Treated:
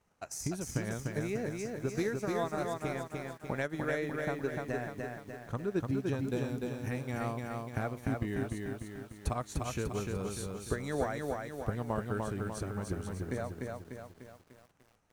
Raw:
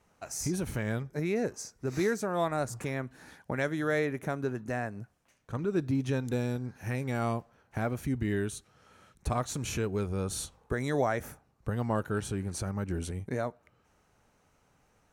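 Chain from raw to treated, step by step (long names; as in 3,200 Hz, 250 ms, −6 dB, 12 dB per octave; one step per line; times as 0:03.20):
transient designer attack +7 dB, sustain −5 dB
feedback echo at a low word length 297 ms, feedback 55%, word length 9 bits, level −3 dB
level −7 dB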